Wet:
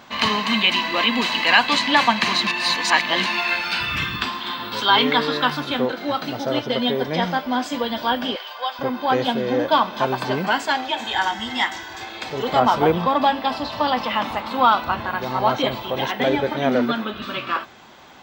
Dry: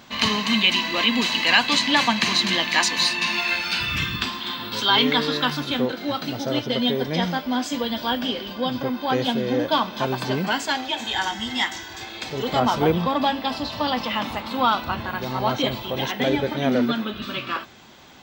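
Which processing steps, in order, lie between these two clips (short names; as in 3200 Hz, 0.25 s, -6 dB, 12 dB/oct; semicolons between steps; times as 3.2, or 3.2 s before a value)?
dynamic EQ 6400 Hz, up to -3 dB, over -43 dBFS, Q 3.6; 8.36–8.79 HPF 690 Hz 24 dB/oct; bell 950 Hz +7.5 dB 2.7 oct; 2.47–3.26 reverse; gain -2.5 dB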